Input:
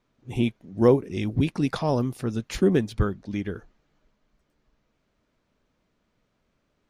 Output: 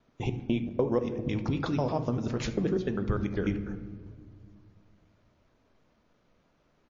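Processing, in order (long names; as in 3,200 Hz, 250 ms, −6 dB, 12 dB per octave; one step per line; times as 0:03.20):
slices reordered back to front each 99 ms, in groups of 2
downward compressor 2.5 to 1, threshold −27 dBFS, peak gain reduction 10 dB
hum removal 91.61 Hz, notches 27
on a send at −15.5 dB: low-shelf EQ 500 Hz +8.5 dB + convolution reverb RT60 1.8 s, pre-delay 20 ms
on the sum: speech leveller within 3 dB 0.5 s
parametric band 720 Hz +5 dB 2.4 octaves
repeating echo 75 ms, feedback 26%, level −19.5 dB
level −1.5 dB
MP3 32 kbit/s 16,000 Hz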